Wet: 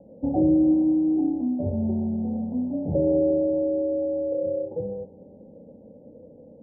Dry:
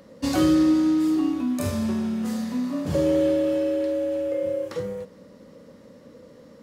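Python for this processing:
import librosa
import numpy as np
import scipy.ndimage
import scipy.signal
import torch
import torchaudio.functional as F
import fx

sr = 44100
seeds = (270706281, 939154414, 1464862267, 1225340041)

y = scipy.signal.sosfilt(scipy.signal.butter(16, 850.0, 'lowpass', fs=sr, output='sos'), x)
y = fx.rev_spring(y, sr, rt60_s=3.4, pass_ms=(33,), chirp_ms=65, drr_db=12.5)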